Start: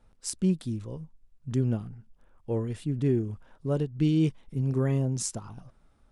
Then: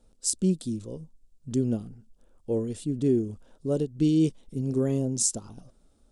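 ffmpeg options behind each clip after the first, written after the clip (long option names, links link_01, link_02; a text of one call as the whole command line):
ffmpeg -i in.wav -af "equalizer=frequency=125:width_type=o:width=1:gain=-5,equalizer=frequency=250:width_type=o:width=1:gain=4,equalizer=frequency=500:width_type=o:width=1:gain=4,equalizer=frequency=1000:width_type=o:width=1:gain=-6,equalizer=frequency=2000:width_type=o:width=1:gain=-8,equalizer=frequency=4000:width_type=o:width=1:gain=3,equalizer=frequency=8000:width_type=o:width=1:gain=9" out.wav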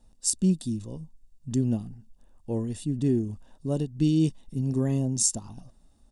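ffmpeg -i in.wav -af "aecho=1:1:1.1:0.52" out.wav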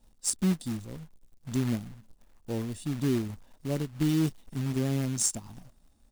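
ffmpeg -i in.wav -af "acrusher=bits=3:mode=log:mix=0:aa=0.000001,volume=-3.5dB" out.wav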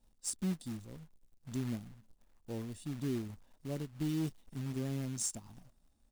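ffmpeg -i in.wav -af "asoftclip=type=tanh:threshold=-16dB,volume=-8dB" out.wav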